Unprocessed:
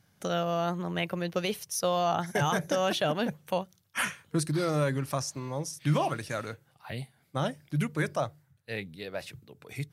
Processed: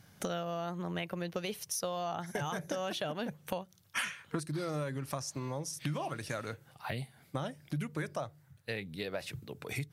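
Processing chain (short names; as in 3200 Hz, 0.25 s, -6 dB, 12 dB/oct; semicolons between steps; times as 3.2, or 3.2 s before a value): 3.97–4.39 bell 4500 Hz -> 1100 Hz +10 dB 2.8 oct; compressor 6:1, threshold -41 dBFS, peak gain reduction 20 dB; gain +6.5 dB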